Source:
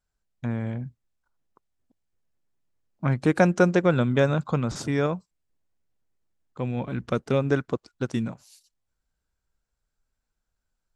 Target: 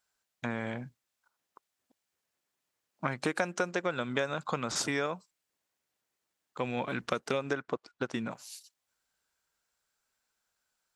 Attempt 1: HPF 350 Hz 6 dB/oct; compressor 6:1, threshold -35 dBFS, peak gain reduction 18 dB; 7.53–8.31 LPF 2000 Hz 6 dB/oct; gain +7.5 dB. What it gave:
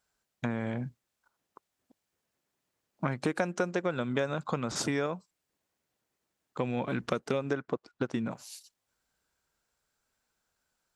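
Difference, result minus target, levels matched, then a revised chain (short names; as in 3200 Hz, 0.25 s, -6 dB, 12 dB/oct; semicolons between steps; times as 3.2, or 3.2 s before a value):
250 Hz band +2.5 dB
HPF 1000 Hz 6 dB/oct; compressor 6:1, threshold -35 dBFS, peak gain reduction 15 dB; 7.53–8.31 LPF 2000 Hz 6 dB/oct; gain +7.5 dB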